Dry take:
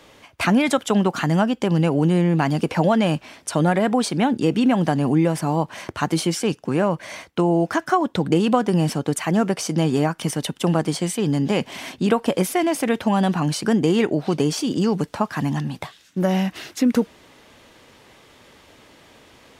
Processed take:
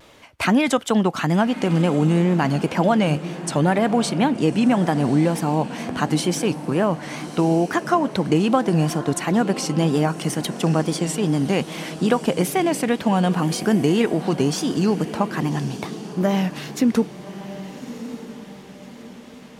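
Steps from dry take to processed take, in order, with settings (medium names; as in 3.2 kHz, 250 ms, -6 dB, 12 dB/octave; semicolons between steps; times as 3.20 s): wow and flutter 100 cents; echo that smears into a reverb 1185 ms, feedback 43%, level -12.5 dB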